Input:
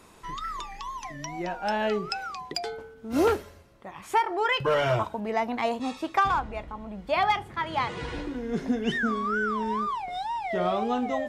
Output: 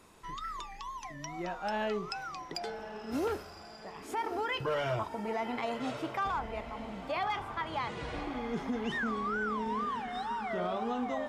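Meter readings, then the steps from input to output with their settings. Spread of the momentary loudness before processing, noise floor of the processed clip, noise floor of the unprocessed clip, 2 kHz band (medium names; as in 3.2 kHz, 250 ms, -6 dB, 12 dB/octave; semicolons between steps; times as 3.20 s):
12 LU, -49 dBFS, -51 dBFS, -7.0 dB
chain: echo that smears into a reverb 1142 ms, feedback 42%, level -11.5 dB; peak limiter -19.5 dBFS, peak gain reduction 8.5 dB; trim -5.5 dB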